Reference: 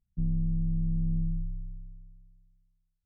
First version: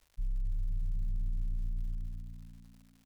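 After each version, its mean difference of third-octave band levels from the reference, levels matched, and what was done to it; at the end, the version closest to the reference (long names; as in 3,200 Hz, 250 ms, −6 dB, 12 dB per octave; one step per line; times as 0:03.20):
12.5 dB: inverse Chebyshev low-pass filter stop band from 500 Hz, stop band 80 dB
reversed playback
downward compressor 6 to 1, threshold −43 dBFS, peak gain reduction 14 dB
reversed playback
surface crackle 250 per second −64 dBFS
echo with shifted repeats 252 ms, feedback 47%, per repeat +58 Hz, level −16 dB
level +11.5 dB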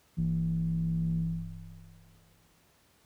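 3.5 dB: background noise pink −66 dBFS
high-pass filter 52 Hz 24 dB per octave
level +1.5 dB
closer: second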